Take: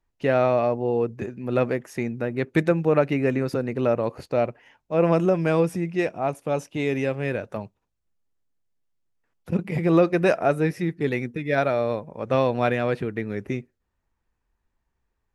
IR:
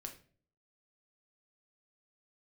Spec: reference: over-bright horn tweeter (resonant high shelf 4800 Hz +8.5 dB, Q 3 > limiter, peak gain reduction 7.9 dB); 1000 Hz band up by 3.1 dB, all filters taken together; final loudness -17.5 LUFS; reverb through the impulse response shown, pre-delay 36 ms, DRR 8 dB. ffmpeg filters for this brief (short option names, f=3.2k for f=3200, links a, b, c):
-filter_complex "[0:a]equalizer=f=1k:t=o:g=5,asplit=2[a][b];[1:a]atrim=start_sample=2205,adelay=36[c];[b][c]afir=irnorm=-1:irlink=0,volume=-4dB[d];[a][d]amix=inputs=2:normalize=0,highshelf=f=4.8k:t=q:w=3:g=8.5,volume=7dB,alimiter=limit=-5.5dB:level=0:latency=1"